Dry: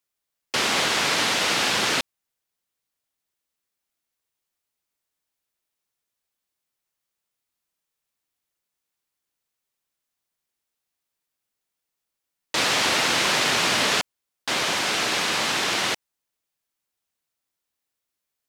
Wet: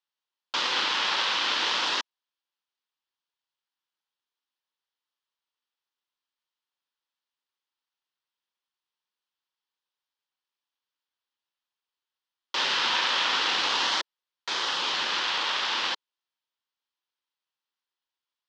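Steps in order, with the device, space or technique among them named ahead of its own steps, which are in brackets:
voice changer toy (ring modulator whose carrier an LFO sweeps 1,700 Hz, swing 85%, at 0.42 Hz; loudspeaker in its box 440–5,000 Hz, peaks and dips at 440 Hz −4 dB, 660 Hz −9 dB, 950 Hz +4 dB, 2,200 Hz −5 dB, 3,200 Hz +4 dB)

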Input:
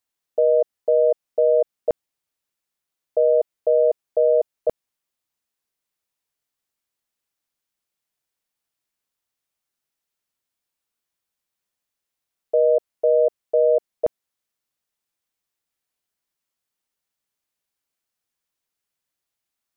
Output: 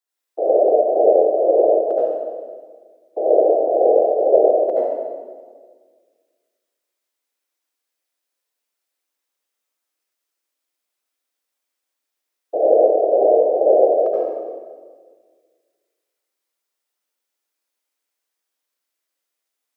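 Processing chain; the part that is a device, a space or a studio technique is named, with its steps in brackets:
whispering ghost (random phases in short frames; high-pass filter 300 Hz 24 dB per octave; convolution reverb RT60 1.6 s, pre-delay 71 ms, DRR −7.5 dB)
level −4.5 dB

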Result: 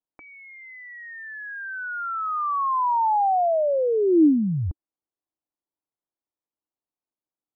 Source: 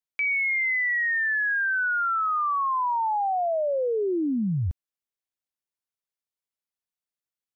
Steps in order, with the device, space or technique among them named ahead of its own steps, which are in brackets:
under water (low-pass filter 1,200 Hz 24 dB per octave; parametric band 310 Hz +11 dB 0.54 octaves)
parametric band 820 Hz +4.5 dB 1.1 octaves

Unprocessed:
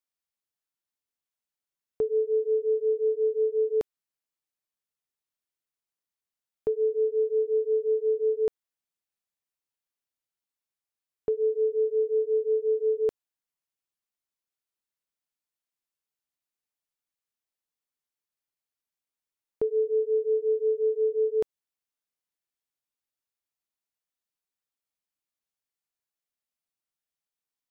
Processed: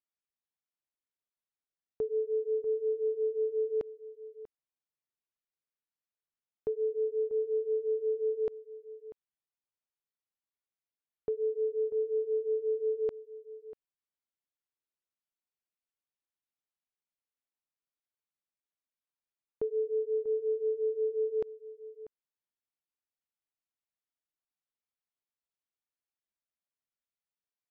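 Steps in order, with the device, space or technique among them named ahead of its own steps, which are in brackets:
shout across a valley (high-frequency loss of the air 170 metres; slap from a distant wall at 110 metres, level −15 dB)
level −5.5 dB

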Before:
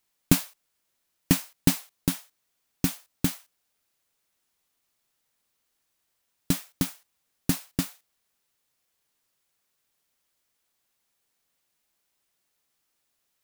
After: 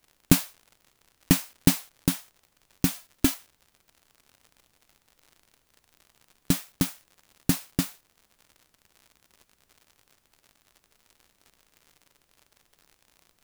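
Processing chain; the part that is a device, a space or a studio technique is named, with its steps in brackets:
0:02.94–0:03.34: comb filter 3 ms, depth 85%
vinyl LP (surface crackle 91 per second −43 dBFS; pink noise bed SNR 40 dB)
level +1.5 dB

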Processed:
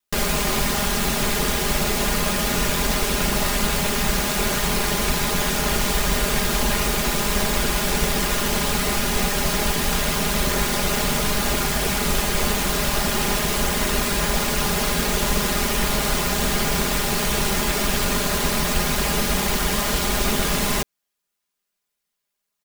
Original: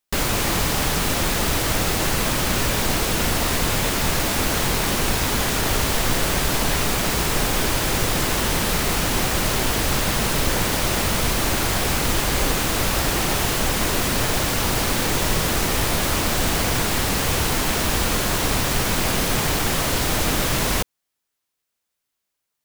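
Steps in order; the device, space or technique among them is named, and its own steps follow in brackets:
ring-modulated robot voice (ring modulation 45 Hz; comb filter 4.9 ms, depth 89%)

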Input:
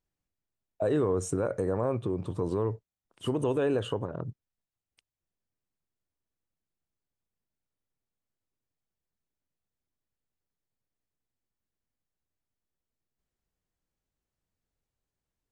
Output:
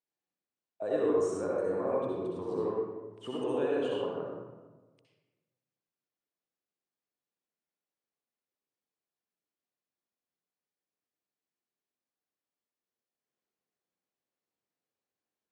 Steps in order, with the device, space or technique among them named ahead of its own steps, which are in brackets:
supermarket ceiling speaker (band-pass filter 260–6,900 Hz; convolution reverb RT60 1.3 s, pre-delay 58 ms, DRR −4.5 dB)
level −7.5 dB

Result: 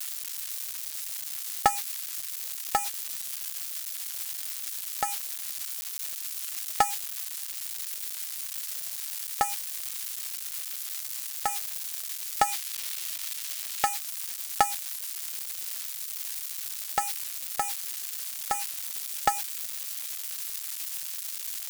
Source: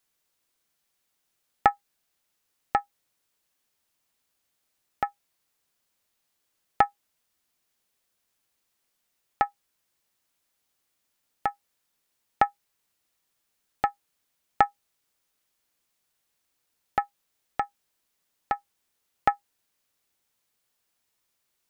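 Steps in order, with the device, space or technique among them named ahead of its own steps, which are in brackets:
budget class-D amplifier (gap after every zero crossing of 0.11 ms; spike at every zero crossing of −13 dBFS)
0:12.47–0:13.89: parametric band 2,800 Hz +4.5 dB 2 octaves
level −2 dB

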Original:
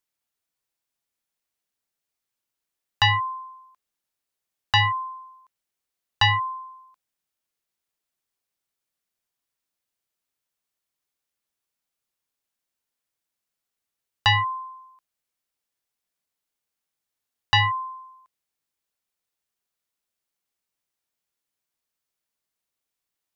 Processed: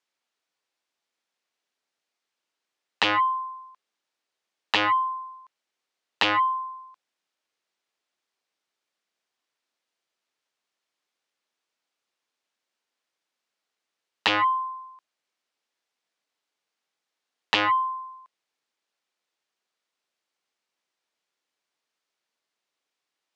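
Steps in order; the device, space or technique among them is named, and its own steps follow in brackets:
public-address speaker with an overloaded transformer (saturating transformer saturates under 1,300 Hz; band-pass filter 280–5,300 Hz)
level +6 dB

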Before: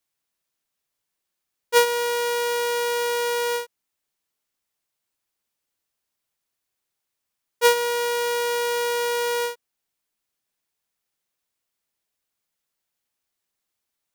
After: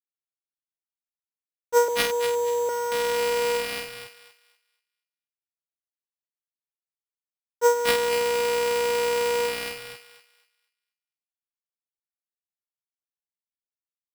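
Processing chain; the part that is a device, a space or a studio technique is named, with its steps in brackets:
0:01.88–0:02.69: Butterworth low-pass 1,100 Hz 48 dB per octave
high-shelf EQ 6,700 Hz −5 dB
three-band delay without the direct sound mids, highs, lows 230/490 ms, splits 250/1,500 Hz
early 8-bit sampler (sample-rate reduction 6,900 Hz, jitter 0%; bit reduction 8 bits)
feedback echo with a high-pass in the loop 241 ms, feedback 28%, high-pass 820 Hz, level −8 dB

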